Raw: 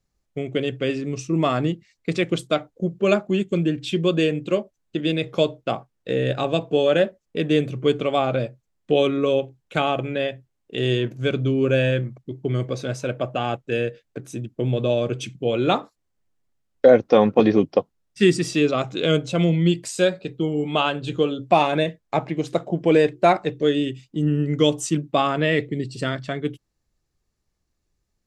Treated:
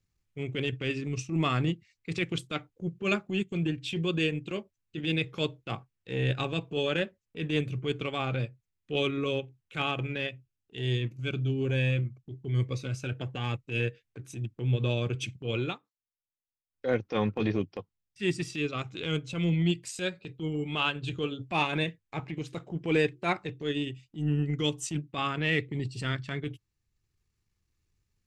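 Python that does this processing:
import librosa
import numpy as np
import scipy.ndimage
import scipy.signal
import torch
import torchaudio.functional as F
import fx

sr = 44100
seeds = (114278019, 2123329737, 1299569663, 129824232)

y = fx.notch_cascade(x, sr, direction='rising', hz=1.2, at=(10.29, 13.8))
y = fx.edit(y, sr, fx.fade_down_up(start_s=15.55, length_s=1.35, db=-22.5, fade_s=0.24), tone=tone)
y = fx.graphic_eq_15(y, sr, hz=(100, 250, 630, 2500), db=(9, -3, -11, 5))
y = fx.transient(y, sr, attack_db=-9, sustain_db=-5)
y = fx.rider(y, sr, range_db=4, speed_s=2.0)
y = y * 10.0 ** (-5.5 / 20.0)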